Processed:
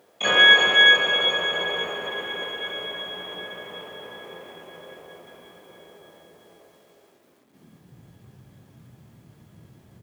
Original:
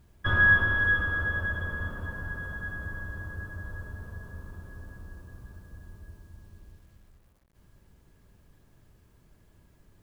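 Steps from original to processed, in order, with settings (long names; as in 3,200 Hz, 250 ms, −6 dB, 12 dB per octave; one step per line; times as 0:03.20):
dynamic equaliser 430 Hz, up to +7 dB, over −55 dBFS, Q 3
pitch-shifted copies added +5 semitones −11 dB, +12 semitones −1 dB
high-pass filter sweep 490 Hz → 120 Hz, 0:07.00–0:08.01
on a send: single-tap delay 353 ms −7 dB
on the sum: level +3.5 dB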